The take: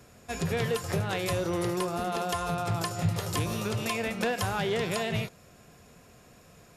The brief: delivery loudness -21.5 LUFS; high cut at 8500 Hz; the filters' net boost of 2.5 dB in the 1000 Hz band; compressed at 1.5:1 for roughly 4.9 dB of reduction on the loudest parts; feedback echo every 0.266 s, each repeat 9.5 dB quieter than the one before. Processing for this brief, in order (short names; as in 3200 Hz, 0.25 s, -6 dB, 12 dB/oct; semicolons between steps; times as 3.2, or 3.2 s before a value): LPF 8500 Hz; bell 1000 Hz +3.5 dB; compressor 1.5:1, threshold -35 dBFS; feedback echo 0.266 s, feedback 33%, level -9.5 dB; gain +11 dB